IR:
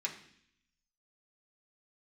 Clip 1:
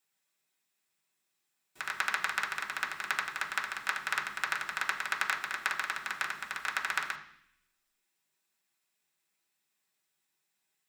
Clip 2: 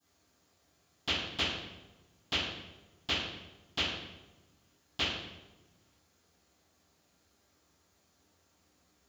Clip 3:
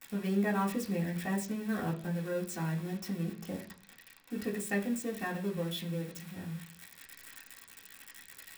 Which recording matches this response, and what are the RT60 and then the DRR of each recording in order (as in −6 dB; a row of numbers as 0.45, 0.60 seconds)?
1; 0.65, 1.1, 0.45 seconds; −2.5, −21.5, −5.0 decibels